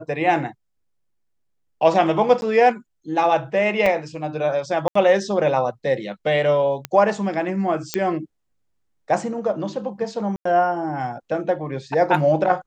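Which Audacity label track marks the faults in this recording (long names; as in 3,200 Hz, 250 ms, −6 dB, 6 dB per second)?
2.410000	2.420000	drop-out 11 ms
3.860000	3.860000	drop-out 4 ms
4.880000	4.950000	drop-out 74 ms
6.850000	6.850000	click −10 dBFS
7.940000	7.940000	click −5 dBFS
10.360000	10.450000	drop-out 94 ms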